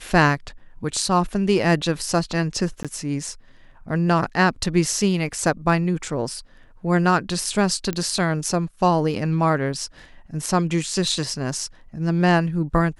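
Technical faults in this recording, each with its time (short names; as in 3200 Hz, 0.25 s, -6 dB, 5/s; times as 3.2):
2.83–2.85 gap 16 ms
7.93 pop -12 dBFS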